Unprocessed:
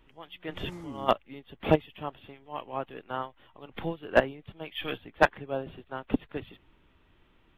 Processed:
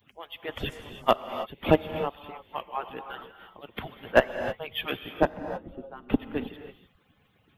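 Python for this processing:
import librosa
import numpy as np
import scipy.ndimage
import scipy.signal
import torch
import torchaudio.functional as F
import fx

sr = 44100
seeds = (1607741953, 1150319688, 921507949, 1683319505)

p1 = fx.hpss_only(x, sr, part='percussive')
p2 = fx.high_shelf(p1, sr, hz=11000.0, db=11.5)
p3 = 10.0 ** (-22.5 / 20.0) * np.tanh(p2 / 10.0 ** (-22.5 / 20.0))
p4 = p2 + (p3 * 10.0 ** (-9.5 / 20.0))
p5 = fx.curve_eq(p4, sr, hz=(170.0, 260.0, 2200.0), db=(0, 5, -15), at=(5.1, 6.09))
p6 = fx.rev_gated(p5, sr, seeds[0], gate_ms=340, shape='rising', drr_db=9.0)
y = p6 * 10.0 ** (1.5 / 20.0)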